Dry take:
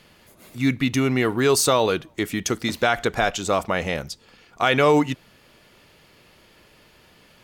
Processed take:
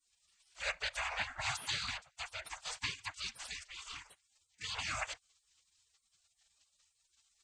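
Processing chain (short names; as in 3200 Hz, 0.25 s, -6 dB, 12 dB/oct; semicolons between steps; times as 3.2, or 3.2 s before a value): chord vocoder minor triad, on G#3; bell 3400 Hz -12 dB 1.6 oct; whisperiser; tilt +4 dB/oct; spectral gate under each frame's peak -25 dB weak; gain +7.5 dB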